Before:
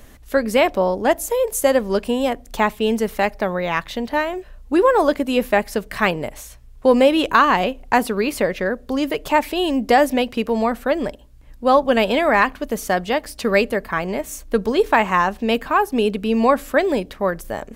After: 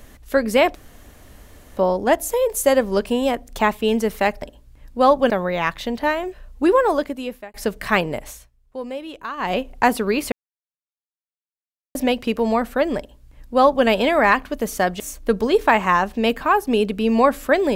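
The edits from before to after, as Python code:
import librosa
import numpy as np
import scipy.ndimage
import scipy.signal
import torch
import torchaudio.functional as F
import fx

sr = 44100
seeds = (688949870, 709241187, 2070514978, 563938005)

y = fx.edit(x, sr, fx.insert_room_tone(at_s=0.75, length_s=1.02),
    fx.fade_out_span(start_s=4.76, length_s=0.88),
    fx.fade_down_up(start_s=6.4, length_s=1.28, db=-16.5, fade_s=0.21),
    fx.silence(start_s=8.42, length_s=1.63),
    fx.duplicate(start_s=11.08, length_s=0.88, to_s=3.4),
    fx.cut(start_s=13.1, length_s=1.15), tone=tone)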